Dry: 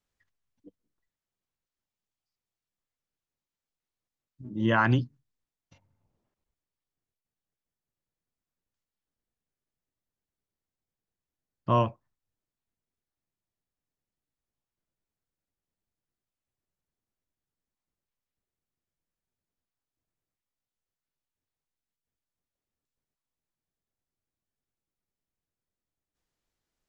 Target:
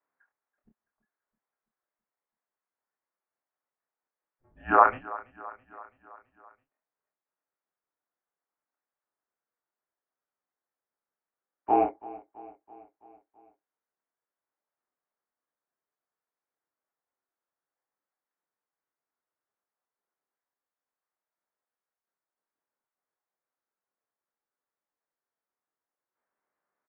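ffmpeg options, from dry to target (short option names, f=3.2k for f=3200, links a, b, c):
-filter_complex "[0:a]highpass=f=580:t=q:w=0.5412,highpass=f=580:t=q:w=1.307,lowpass=f=2.3k:t=q:w=0.5176,lowpass=f=2.3k:t=q:w=0.7071,lowpass=f=2.3k:t=q:w=1.932,afreqshift=-270,equalizer=f=960:w=0.63:g=6,asplit=2[a][b];[b]adelay=27,volume=-4.5dB[c];[a][c]amix=inputs=2:normalize=0,aecho=1:1:331|662|993|1324|1655:0.112|0.0662|0.0391|0.023|0.0136"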